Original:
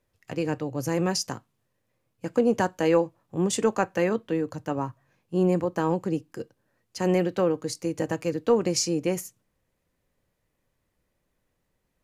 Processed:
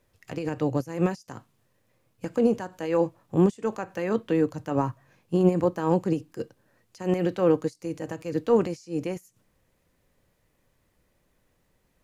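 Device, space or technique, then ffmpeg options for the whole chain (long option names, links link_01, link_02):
de-esser from a sidechain: -filter_complex "[0:a]asplit=2[link_01][link_02];[link_02]highpass=6600,apad=whole_len=530897[link_03];[link_01][link_03]sidechaincompress=threshold=-60dB:ratio=10:attack=3.4:release=73,volume=6.5dB"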